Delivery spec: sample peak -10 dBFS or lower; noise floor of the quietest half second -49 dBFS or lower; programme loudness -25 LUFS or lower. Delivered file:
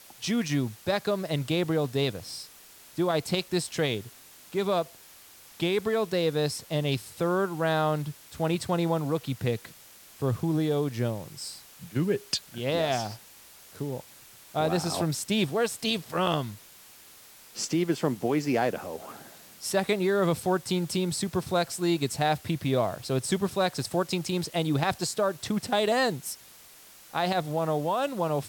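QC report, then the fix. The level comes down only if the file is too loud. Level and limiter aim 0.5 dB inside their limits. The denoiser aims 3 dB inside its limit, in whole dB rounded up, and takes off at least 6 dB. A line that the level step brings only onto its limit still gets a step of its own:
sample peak -11.0 dBFS: pass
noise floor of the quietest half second -52 dBFS: pass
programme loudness -28.5 LUFS: pass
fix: none needed

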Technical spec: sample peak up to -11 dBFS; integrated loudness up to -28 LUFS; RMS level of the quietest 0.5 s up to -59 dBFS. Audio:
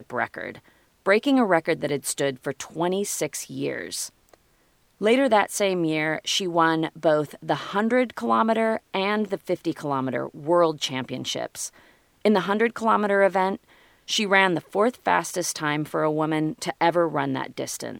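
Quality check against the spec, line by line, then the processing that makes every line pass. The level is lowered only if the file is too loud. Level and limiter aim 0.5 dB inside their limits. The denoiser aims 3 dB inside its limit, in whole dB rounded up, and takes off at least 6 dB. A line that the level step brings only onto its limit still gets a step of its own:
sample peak -3.5 dBFS: fail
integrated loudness -24.0 LUFS: fail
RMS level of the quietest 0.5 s -63 dBFS: pass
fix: trim -4.5 dB; peak limiter -11.5 dBFS

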